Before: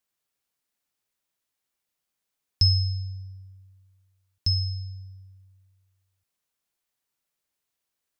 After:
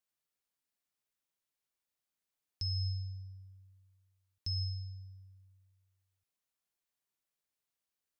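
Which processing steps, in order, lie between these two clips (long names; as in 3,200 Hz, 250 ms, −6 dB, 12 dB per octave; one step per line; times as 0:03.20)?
brickwall limiter −21 dBFS, peak gain reduction 11.5 dB
level −7.5 dB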